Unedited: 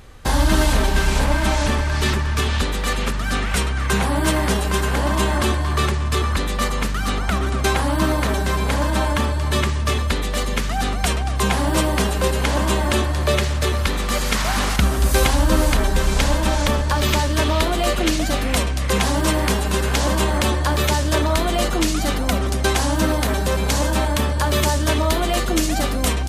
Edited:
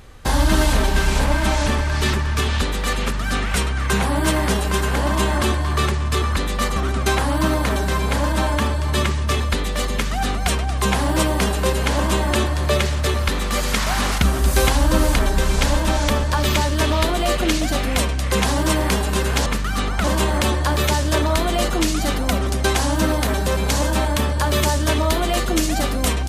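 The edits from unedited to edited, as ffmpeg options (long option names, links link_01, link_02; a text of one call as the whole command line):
ffmpeg -i in.wav -filter_complex "[0:a]asplit=4[link_01][link_02][link_03][link_04];[link_01]atrim=end=6.762[link_05];[link_02]atrim=start=7.338:end=20.042[link_06];[link_03]atrim=start=6.758:end=7.342[link_07];[link_04]atrim=start=20.038[link_08];[link_05][link_06]acrossfade=duration=0.004:curve1=hsin:curve2=hsin[link_09];[link_09][link_07]acrossfade=duration=0.004:curve1=hsin:curve2=hsin[link_10];[link_10][link_08]acrossfade=duration=0.004:curve1=hsin:curve2=hsin" out.wav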